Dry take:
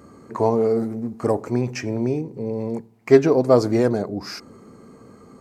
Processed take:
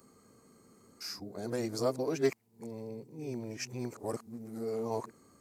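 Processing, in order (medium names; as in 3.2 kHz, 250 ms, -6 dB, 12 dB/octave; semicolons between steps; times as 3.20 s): reverse the whole clip; pre-emphasis filter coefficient 0.8; trim -2.5 dB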